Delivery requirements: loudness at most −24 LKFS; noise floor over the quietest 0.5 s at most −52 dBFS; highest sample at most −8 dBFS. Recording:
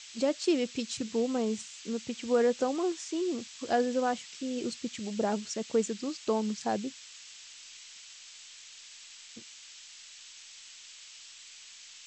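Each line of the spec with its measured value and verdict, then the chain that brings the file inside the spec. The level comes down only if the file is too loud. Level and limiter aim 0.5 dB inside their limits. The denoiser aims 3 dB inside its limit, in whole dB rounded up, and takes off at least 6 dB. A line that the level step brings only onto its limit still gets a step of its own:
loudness −31.5 LKFS: in spec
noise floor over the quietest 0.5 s −51 dBFS: out of spec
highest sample −15.5 dBFS: in spec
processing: broadband denoise 6 dB, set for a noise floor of −51 dBFS

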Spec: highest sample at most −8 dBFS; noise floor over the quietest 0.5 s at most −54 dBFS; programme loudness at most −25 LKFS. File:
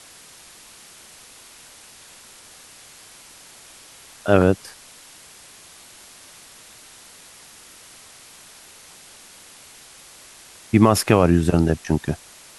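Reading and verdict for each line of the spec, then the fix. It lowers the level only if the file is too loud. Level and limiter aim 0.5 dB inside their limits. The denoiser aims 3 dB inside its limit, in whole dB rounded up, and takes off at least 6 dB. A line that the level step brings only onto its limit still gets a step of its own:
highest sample −2.0 dBFS: out of spec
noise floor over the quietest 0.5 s −46 dBFS: out of spec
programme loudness −19.0 LKFS: out of spec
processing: broadband denoise 6 dB, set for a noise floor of −46 dBFS
level −6.5 dB

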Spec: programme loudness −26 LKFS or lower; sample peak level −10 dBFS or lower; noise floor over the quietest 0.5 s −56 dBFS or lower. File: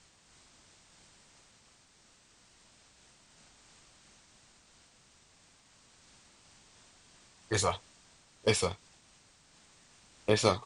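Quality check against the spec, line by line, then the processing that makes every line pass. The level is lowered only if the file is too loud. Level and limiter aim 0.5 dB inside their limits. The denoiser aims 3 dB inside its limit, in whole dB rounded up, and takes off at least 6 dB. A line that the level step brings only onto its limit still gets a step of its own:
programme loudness −31.5 LKFS: in spec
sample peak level −10.5 dBFS: in spec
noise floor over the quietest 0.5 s −64 dBFS: in spec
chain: no processing needed

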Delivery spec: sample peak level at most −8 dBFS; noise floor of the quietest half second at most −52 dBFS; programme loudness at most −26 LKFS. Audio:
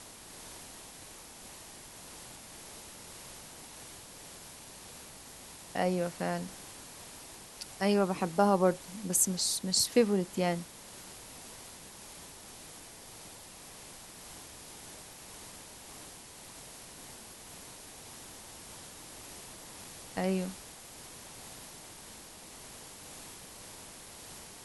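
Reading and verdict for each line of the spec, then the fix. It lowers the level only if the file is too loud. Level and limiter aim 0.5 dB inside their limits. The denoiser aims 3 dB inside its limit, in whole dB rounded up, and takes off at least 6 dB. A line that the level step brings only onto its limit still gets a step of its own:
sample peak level −11.5 dBFS: in spec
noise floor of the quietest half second −50 dBFS: out of spec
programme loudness −34.5 LKFS: in spec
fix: broadband denoise 6 dB, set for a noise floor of −50 dBFS

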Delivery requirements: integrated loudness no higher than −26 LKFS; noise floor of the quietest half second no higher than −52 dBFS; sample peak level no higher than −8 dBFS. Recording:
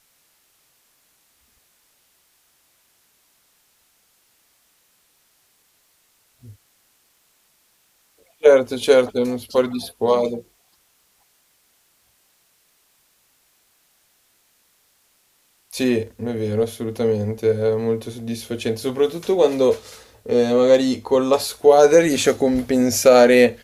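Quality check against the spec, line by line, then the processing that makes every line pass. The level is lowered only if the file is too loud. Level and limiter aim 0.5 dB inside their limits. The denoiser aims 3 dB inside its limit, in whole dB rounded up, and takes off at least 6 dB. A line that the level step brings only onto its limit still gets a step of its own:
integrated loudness −18.0 LKFS: out of spec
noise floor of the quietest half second −62 dBFS: in spec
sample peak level −2.5 dBFS: out of spec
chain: level −8.5 dB

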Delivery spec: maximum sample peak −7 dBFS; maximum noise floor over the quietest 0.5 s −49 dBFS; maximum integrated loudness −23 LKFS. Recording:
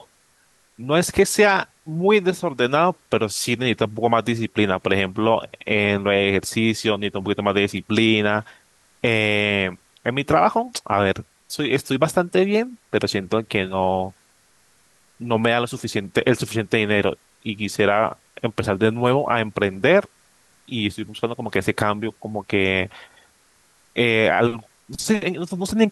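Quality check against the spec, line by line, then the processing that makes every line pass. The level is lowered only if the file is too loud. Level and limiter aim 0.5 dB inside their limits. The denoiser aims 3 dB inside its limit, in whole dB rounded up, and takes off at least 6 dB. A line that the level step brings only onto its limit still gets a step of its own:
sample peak −4.5 dBFS: out of spec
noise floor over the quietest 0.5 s −59 dBFS: in spec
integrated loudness −21.0 LKFS: out of spec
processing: level −2.5 dB
brickwall limiter −7.5 dBFS

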